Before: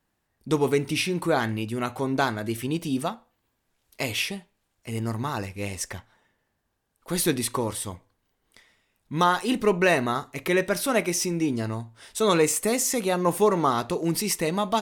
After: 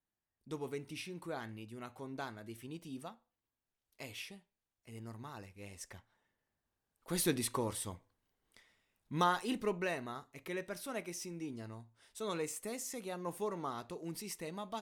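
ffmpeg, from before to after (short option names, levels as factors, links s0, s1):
-af "volume=0.355,afade=t=in:st=5.64:d=1.55:silence=0.316228,afade=t=out:st=9.14:d=0.82:silence=0.354813"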